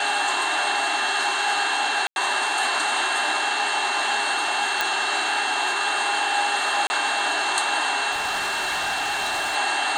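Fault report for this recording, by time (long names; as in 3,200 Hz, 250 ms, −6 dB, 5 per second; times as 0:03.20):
whistle 2,700 Hz −28 dBFS
0:02.07–0:02.16: drop-out 91 ms
0:04.81: click
0:06.87–0:06.90: drop-out 30 ms
0:08.11–0:09.56: clipping −21.5 dBFS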